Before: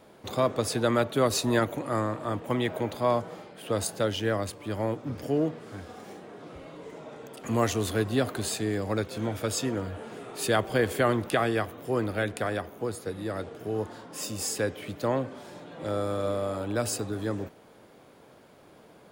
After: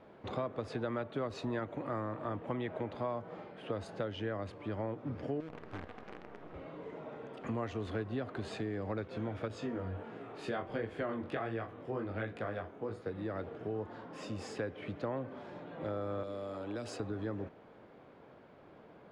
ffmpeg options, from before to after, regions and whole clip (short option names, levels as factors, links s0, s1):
-filter_complex "[0:a]asettb=1/sr,asplit=3[s0][s1][s2];[s0]atrim=end=5.404[s3];[s1]atrim=start=5.4:end=6.54,asetpts=PTS-STARTPTS,afade=t=in:d=0.004:c=qsin,afade=t=out:st=1.136:d=0.004:c=qsin,lowpass=4100,acompressor=threshold=0.0224:ratio=12:attack=3.2:release=140:knee=1:detection=peak,acrusher=bits=7:dc=4:mix=0:aa=0.000001[s4];[s2]atrim=start=6.536[s5];[s3][s4]acrossfade=d=0.004:c1=hsin:c2=qsin[s6];[s6][s5]acrossfade=d=0.004:c1=qsin:c2=hsin,asettb=1/sr,asplit=3[s7][s8][s9];[s7]atrim=end=9.484[s10];[s8]atrim=start=9.48:end=13.06,asetpts=PTS-STARTPTS,afade=t=in:d=0.004:c=qsin,afade=t=out:st=3.576:d=0.004:c=qsin,flanger=delay=17.5:depth=4.8:speed=1.4,asplit=2[s11][s12];[s12]adelay=43,volume=0.2[s13];[s11][s13]amix=inputs=2:normalize=0,atrim=end_sample=157878[s14];[s9]atrim=start=13.056[s15];[s10][s14]acrossfade=d=0.004:c1=hsin:c2=qsin[s16];[s16][s15]acrossfade=d=0.004:c1=qsin:c2=hsin,asettb=1/sr,asplit=3[s17][s18][s19];[s17]atrim=end=16.234[s20];[s18]atrim=start=16.23:end=17,asetpts=PTS-STARTPTS,afade=t=in:d=0.004:c=qsin,afade=t=out:st=0.766:d=0.004:c=qsin,acrossover=split=350|3000[s21][s22][s23];[s22]acompressor=threshold=0.0126:ratio=6:attack=3.2:release=140:knee=2.83:detection=peak[s24];[s21][s24][s23]amix=inputs=3:normalize=0,bass=f=250:g=-11,treble=f=4000:g=4[s25];[s19]atrim=start=16.996[s26];[s20][s25]acrossfade=d=0.004:c1=hsin:c2=qsin[s27];[s27][s26]acrossfade=d=0.004:c1=qsin:c2=hsin,lowpass=2400,acompressor=threshold=0.0251:ratio=4,volume=0.75"